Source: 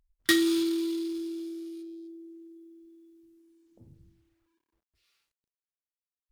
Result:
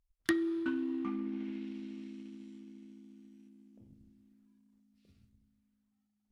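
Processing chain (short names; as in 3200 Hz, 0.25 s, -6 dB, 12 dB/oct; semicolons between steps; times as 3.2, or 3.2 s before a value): echoes that change speed 0.294 s, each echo -4 st, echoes 2, each echo -6 dB; transient shaper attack +6 dB, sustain +2 dB; treble ducked by the level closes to 1200 Hz, closed at -25 dBFS; on a send: reverb RT60 4.9 s, pre-delay 48 ms, DRR 23 dB; on the sum: gain -8 dB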